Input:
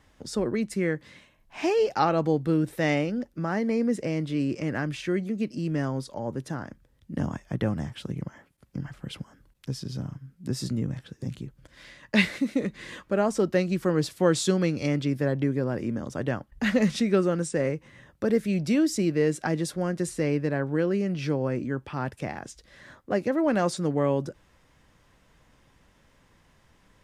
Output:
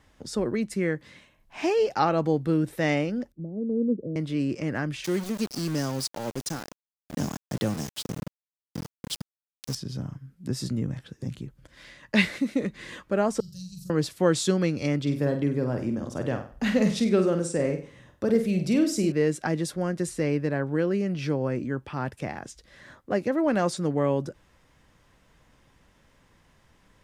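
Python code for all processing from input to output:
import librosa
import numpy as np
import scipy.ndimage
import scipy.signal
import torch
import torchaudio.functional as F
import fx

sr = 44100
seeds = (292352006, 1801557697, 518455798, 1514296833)

y = fx.chain(x, sr, fx.steep_lowpass(hz=510.0, slope=36),
    fx.band_widen(depth_pct=100), at=(3.32, 4.16))
y = fx.chain(y, sr, fx.highpass(hz=100.0, slope=12),
    fx.high_shelf_res(hz=3300.0, db=12.5, q=1.5),
    fx.sample_gate(floor_db=-33.5), at=(5.04, 9.75))
y = fx.chain(y, sr, fx.ellip_bandstop(low_hz=130.0, high_hz=4800.0, order=3, stop_db=40),
    fx.peak_eq(hz=780.0, db=-11.5, octaves=0.24),
    fx.room_flutter(wall_m=7.4, rt60_s=0.49), at=(13.4, 13.9))
y = fx.chain(y, sr, fx.peak_eq(hz=1700.0, db=-4.5, octaves=0.86),
    fx.room_flutter(wall_m=8.3, rt60_s=0.39), at=(15.01, 19.12))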